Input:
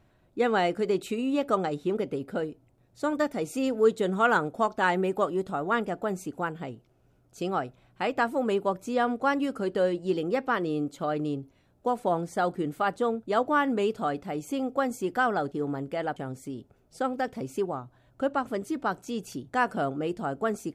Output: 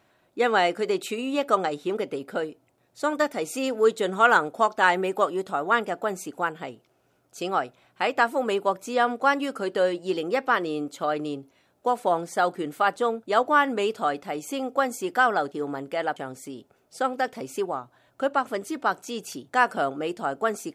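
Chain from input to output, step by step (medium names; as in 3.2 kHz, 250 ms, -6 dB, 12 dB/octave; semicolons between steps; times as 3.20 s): high-pass 640 Hz 6 dB/octave; trim +6.5 dB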